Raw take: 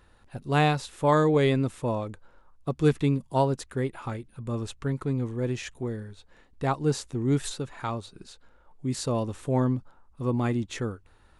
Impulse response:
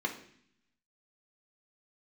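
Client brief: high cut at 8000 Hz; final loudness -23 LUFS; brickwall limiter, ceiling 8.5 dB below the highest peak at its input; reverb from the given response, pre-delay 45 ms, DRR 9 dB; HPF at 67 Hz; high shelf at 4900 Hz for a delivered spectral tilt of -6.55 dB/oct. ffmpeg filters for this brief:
-filter_complex "[0:a]highpass=67,lowpass=8k,highshelf=f=4.9k:g=-3.5,alimiter=limit=-17dB:level=0:latency=1,asplit=2[a][b];[1:a]atrim=start_sample=2205,adelay=45[c];[b][c]afir=irnorm=-1:irlink=0,volume=-14.5dB[d];[a][d]amix=inputs=2:normalize=0,volume=6.5dB"

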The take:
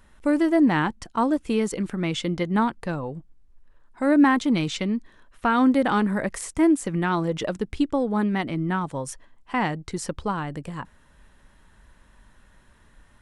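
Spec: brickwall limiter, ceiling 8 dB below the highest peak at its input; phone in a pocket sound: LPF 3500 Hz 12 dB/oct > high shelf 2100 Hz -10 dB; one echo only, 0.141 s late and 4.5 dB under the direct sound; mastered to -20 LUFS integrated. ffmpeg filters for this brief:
-af "alimiter=limit=-15dB:level=0:latency=1,lowpass=3.5k,highshelf=f=2.1k:g=-10,aecho=1:1:141:0.596,volume=5dB"

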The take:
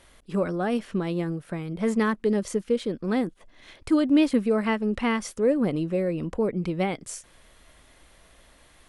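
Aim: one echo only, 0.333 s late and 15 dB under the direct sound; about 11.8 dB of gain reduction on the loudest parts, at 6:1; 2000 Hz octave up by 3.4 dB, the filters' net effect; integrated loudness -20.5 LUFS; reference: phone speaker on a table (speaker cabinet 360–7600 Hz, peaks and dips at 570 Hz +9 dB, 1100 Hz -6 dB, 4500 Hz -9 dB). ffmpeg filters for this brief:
-af "equalizer=f=2k:t=o:g=4.5,acompressor=threshold=-29dB:ratio=6,highpass=f=360:w=0.5412,highpass=f=360:w=1.3066,equalizer=f=570:t=q:w=4:g=9,equalizer=f=1.1k:t=q:w=4:g=-6,equalizer=f=4.5k:t=q:w=4:g=-9,lowpass=f=7.6k:w=0.5412,lowpass=f=7.6k:w=1.3066,aecho=1:1:333:0.178,volume=14dB"

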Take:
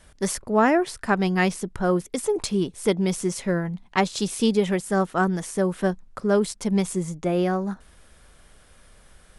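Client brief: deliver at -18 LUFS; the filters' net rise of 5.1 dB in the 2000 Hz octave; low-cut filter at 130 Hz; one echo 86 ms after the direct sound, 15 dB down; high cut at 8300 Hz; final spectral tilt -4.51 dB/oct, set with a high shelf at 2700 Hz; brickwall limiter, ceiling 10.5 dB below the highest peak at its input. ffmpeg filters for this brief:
-af "highpass=130,lowpass=8.3k,equalizer=f=2k:t=o:g=4.5,highshelf=f=2.7k:g=5,alimiter=limit=-13.5dB:level=0:latency=1,aecho=1:1:86:0.178,volume=7dB"

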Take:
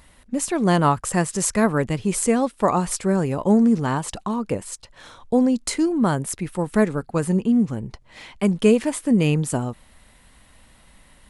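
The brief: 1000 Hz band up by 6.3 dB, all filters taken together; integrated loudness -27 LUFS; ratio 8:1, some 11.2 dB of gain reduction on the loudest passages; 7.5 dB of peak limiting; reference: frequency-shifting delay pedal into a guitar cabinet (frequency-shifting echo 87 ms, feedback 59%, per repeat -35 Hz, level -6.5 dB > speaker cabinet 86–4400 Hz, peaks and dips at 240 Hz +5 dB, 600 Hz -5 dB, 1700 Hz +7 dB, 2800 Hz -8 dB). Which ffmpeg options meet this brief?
-filter_complex "[0:a]equalizer=f=1k:t=o:g=8,acompressor=threshold=-21dB:ratio=8,alimiter=limit=-17.5dB:level=0:latency=1,asplit=9[a][b][c][d][e][f][g][h][i];[b]adelay=87,afreqshift=-35,volume=-6.5dB[j];[c]adelay=174,afreqshift=-70,volume=-11.1dB[k];[d]adelay=261,afreqshift=-105,volume=-15.7dB[l];[e]adelay=348,afreqshift=-140,volume=-20.2dB[m];[f]adelay=435,afreqshift=-175,volume=-24.8dB[n];[g]adelay=522,afreqshift=-210,volume=-29.4dB[o];[h]adelay=609,afreqshift=-245,volume=-34dB[p];[i]adelay=696,afreqshift=-280,volume=-38.6dB[q];[a][j][k][l][m][n][o][p][q]amix=inputs=9:normalize=0,highpass=86,equalizer=f=240:t=q:w=4:g=5,equalizer=f=600:t=q:w=4:g=-5,equalizer=f=1.7k:t=q:w=4:g=7,equalizer=f=2.8k:t=q:w=4:g=-8,lowpass=f=4.4k:w=0.5412,lowpass=f=4.4k:w=1.3066,volume=-1dB"

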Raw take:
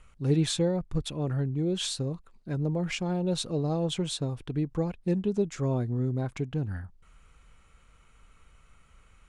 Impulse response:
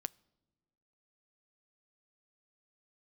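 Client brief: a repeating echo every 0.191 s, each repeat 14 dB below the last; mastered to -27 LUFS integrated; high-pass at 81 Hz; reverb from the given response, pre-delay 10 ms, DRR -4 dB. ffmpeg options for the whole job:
-filter_complex "[0:a]highpass=81,aecho=1:1:191|382:0.2|0.0399,asplit=2[a][b];[1:a]atrim=start_sample=2205,adelay=10[c];[b][c]afir=irnorm=-1:irlink=0,volume=6dB[d];[a][d]amix=inputs=2:normalize=0,volume=-2dB"

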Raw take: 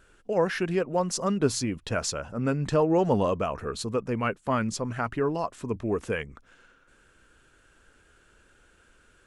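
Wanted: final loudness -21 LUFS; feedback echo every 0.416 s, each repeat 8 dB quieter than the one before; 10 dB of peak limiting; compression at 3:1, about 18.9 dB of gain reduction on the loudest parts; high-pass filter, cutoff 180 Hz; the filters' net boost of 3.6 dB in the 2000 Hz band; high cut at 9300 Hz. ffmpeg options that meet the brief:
-af "highpass=180,lowpass=9.3k,equalizer=f=2k:t=o:g=5,acompressor=threshold=-45dB:ratio=3,alimiter=level_in=11dB:limit=-24dB:level=0:latency=1,volume=-11dB,aecho=1:1:416|832|1248|1664|2080:0.398|0.159|0.0637|0.0255|0.0102,volume=25dB"

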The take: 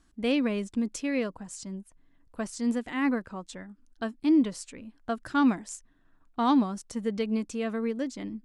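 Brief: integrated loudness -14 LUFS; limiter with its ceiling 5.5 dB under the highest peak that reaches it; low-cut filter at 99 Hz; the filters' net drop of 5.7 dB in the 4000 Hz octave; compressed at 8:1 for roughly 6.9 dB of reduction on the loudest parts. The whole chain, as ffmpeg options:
-af "highpass=99,equalizer=f=4k:t=o:g=-8,acompressor=threshold=-25dB:ratio=8,volume=21dB,alimiter=limit=-4dB:level=0:latency=1"

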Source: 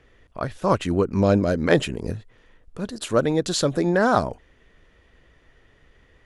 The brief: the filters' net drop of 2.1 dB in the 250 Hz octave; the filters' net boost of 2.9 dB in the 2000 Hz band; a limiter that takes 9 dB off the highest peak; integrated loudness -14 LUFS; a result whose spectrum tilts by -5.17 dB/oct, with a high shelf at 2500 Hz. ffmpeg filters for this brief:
-af "equalizer=f=250:t=o:g=-3,equalizer=f=2k:t=o:g=7,highshelf=f=2.5k:g=-7,volume=11dB,alimiter=limit=-1dB:level=0:latency=1"

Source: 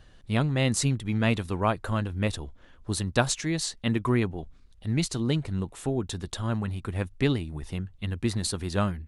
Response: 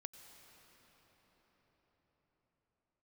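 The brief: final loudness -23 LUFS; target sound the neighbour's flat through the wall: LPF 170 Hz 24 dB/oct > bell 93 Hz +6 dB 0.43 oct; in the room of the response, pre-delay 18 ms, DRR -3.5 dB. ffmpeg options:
-filter_complex "[0:a]asplit=2[a][b];[1:a]atrim=start_sample=2205,adelay=18[c];[b][c]afir=irnorm=-1:irlink=0,volume=8.5dB[d];[a][d]amix=inputs=2:normalize=0,lowpass=f=170:w=0.5412,lowpass=f=170:w=1.3066,equalizer=f=93:t=o:w=0.43:g=6,volume=2dB"

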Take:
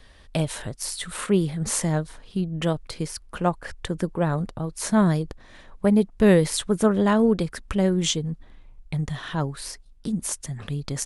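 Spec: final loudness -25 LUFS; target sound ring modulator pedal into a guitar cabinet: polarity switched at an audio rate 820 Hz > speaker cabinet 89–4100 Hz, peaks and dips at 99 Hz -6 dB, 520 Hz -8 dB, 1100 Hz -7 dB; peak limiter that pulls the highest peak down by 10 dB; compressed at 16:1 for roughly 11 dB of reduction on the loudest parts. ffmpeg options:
-af "acompressor=threshold=-24dB:ratio=16,alimiter=limit=-21dB:level=0:latency=1,aeval=exprs='val(0)*sgn(sin(2*PI*820*n/s))':c=same,highpass=89,equalizer=f=99:t=q:w=4:g=-6,equalizer=f=520:t=q:w=4:g=-8,equalizer=f=1.1k:t=q:w=4:g=-7,lowpass=f=4.1k:w=0.5412,lowpass=f=4.1k:w=1.3066,volume=9.5dB"

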